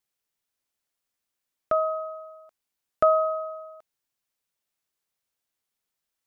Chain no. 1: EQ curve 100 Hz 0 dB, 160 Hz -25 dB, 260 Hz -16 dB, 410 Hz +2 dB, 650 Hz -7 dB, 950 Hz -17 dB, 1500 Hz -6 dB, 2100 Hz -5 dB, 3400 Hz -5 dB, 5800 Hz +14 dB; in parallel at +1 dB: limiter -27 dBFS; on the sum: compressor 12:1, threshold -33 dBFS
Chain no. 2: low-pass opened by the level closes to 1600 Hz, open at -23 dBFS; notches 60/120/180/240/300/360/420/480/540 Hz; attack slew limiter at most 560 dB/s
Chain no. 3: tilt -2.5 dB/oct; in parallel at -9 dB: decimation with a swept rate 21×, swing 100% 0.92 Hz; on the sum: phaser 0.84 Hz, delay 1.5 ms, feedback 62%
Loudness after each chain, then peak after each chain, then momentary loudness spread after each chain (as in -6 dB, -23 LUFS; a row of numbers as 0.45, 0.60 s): -39.5, -30.5, -22.0 LUFS; -14.5, -15.5, -4.0 dBFS; 14, 17, 18 LU